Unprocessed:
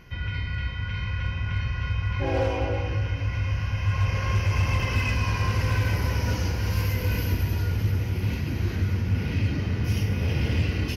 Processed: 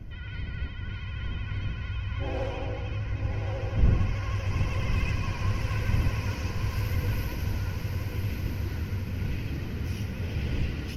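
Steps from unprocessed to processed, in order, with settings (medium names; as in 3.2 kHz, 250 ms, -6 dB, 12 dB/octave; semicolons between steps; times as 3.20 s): wind noise 88 Hz -26 dBFS; echo that smears into a reverb 1139 ms, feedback 43%, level -4 dB; vibrato 13 Hz 55 cents; trim -8 dB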